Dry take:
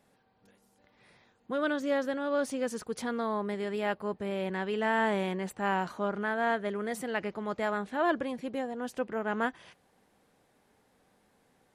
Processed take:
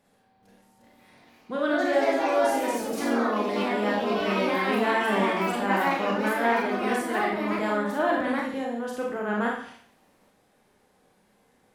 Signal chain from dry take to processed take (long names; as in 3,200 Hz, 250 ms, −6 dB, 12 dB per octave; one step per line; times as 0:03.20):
four-comb reverb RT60 0.56 s, combs from 30 ms, DRR −1.5 dB
delay with pitch and tempo change per echo 428 ms, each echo +3 semitones, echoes 3